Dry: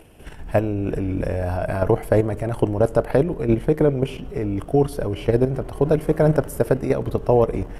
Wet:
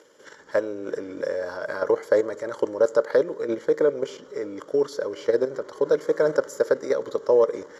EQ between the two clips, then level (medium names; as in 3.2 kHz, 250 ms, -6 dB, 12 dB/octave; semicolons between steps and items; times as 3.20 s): resonant high-pass 550 Hz, resonance Q 3.7; resonant low-pass 7.2 kHz, resonance Q 7.6; static phaser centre 2.6 kHz, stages 6; 0.0 dB